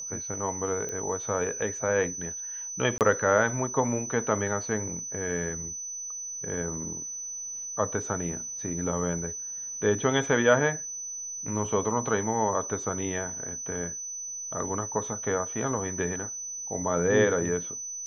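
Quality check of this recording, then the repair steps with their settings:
whine 6 kHz -34 dBFS
0.89 s: pop -22 dBFS
2.98–3.01 s: dropout 28 ms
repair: de-click; band-stop 6 kHz, Q 30; interpolate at 2.98 s, 28 ms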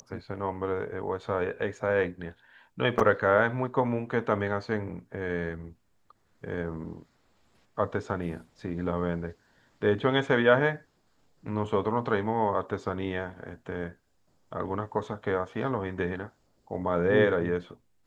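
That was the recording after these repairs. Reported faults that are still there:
nothing left

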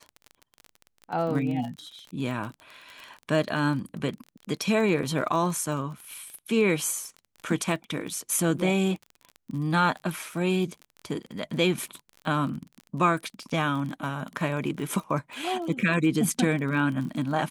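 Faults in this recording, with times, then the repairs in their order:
crackle 30 per s -33 dBFS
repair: de-click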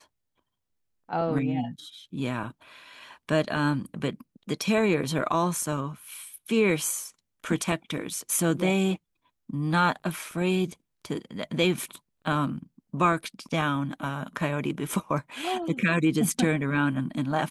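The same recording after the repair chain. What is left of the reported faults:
nothing left

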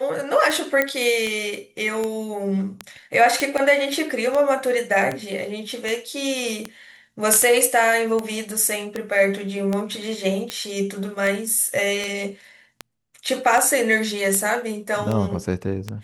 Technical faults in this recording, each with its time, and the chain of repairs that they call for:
tick 78 rpm
0.82 s: pop -6 dBFS
3.40 s: pop -6 dBFS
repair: de-click

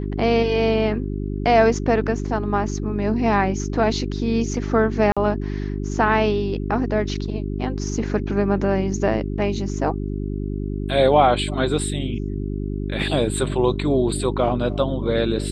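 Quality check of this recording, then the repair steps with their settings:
hum 50 Hz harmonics 8 -26 dBFS
5.12–5.17 s: dropout 46 ms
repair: de-hum 50 Hz, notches 8; interpolate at 5.12 s, 46 ms

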